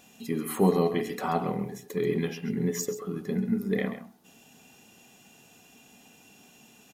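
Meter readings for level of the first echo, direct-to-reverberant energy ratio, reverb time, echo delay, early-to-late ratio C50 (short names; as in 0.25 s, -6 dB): -12.0 dB, none, none, 0.134 s, none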